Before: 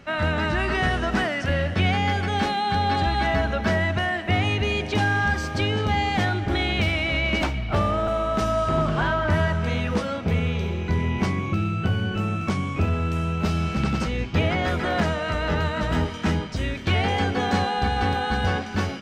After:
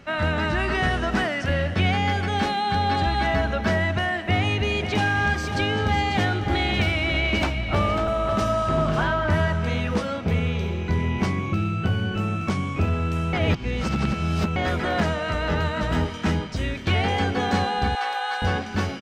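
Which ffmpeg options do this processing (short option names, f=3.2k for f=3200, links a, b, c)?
-filter_complex "[0:a]asplit=3[a][b][c];[a]afade=t=out:st=4.73:d=0.02[d];[b]aecho=1:1:546:0.355,afade=t=in:st=4.73:d=0.02,afade=t=out:st=9.04:d=0.02[e];[c]afade=t=in:st=9.04:d=0.02[f];[d][e][f]amix=inputs=3:normalize=0,asettb=1/sr,asplit=3[g][h][i];[g]atrim=end=17.954[j];[h]atrim=start=17.95:end=18.42,asetpts=PTS-STARTPTS,afade=t=in:d=0.004:c=qsin,afade=t=out:st=0.466:d=0.004:c=qsin,highpass=f=620:w=0.5412,highpass=f=620:w=1.3066[k];[i]atrim=start=18.416[l];[j][k]acrossfade=d=0.004:c1=hsin:c2=qsin[m];[m][l]acrossfade=d=0.004:c1=qsin:c2=hsin,asplit=3[n][o][p];[n]atrim=end=13.332[q];[o]atrim=start=13.328:end=14.562,asetpts=PTS-STARTPTS,areverse[r];[p]atrim=start=14.558[s];[q][r]acrossfade=d=0.004:c1=hsin:c2=hsin[t];[t][s]acrossfade=d=0.004:c1=hsin:c2=hsin"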